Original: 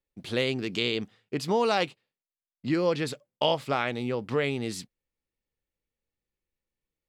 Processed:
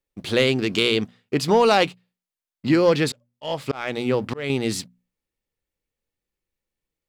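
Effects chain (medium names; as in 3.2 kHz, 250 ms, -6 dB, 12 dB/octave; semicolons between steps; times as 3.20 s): hum notches 60/120/180/240 Hz; waveshaping leveller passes 1; 3.10–4.50 s: slow attack 301 ms; trim +5 dB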